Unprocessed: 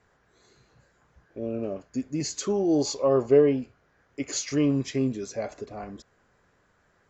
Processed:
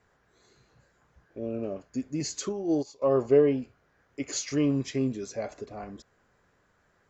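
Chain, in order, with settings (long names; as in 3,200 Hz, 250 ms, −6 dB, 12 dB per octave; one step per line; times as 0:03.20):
0:02.49–0:03.02: expander for the loud parts 2.5 to 1, over −32 dBFS
level −2 dB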